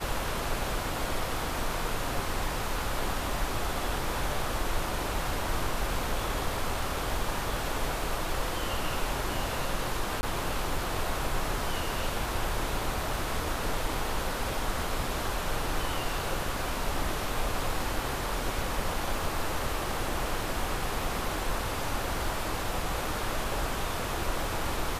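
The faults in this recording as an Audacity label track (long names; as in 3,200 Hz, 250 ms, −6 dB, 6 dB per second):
10.210000	10.230000	drop-out 20 ms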